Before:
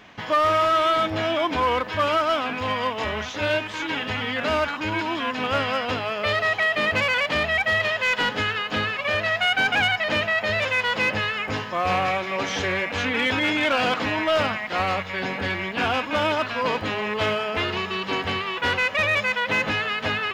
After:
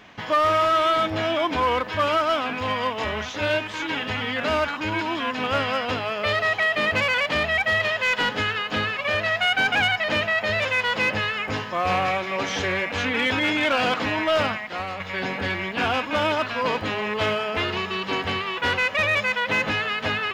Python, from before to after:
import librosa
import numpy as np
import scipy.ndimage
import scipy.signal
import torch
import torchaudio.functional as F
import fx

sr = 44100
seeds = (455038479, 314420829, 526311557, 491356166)

y = fx.edit(x, sr, fx.fade_out_to(start_s=14.5, length_s=0.5, curve='qua', floor_db=-8.0), tone=tone)